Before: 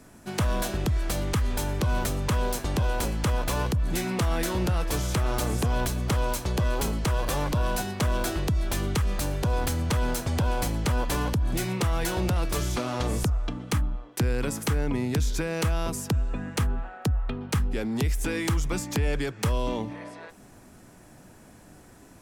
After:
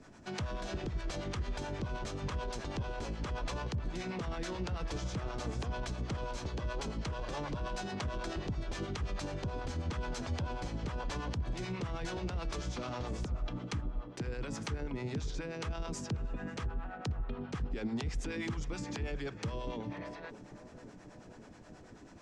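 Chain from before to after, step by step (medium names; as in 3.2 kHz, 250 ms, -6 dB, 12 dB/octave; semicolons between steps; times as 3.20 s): low-pass 6.4 kHz 24 dB/octave; hum notches 50/100/150/200/250 Hz; peak limiter -27 dBFS, peak gain reduction 11.5 dB; harmonic tremolo 9.3 Hz, depth 70%, crossover 530 Hz; on a send: tape echo 539 ms, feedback 80%, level -11.5 dB, low-pass 1 kHz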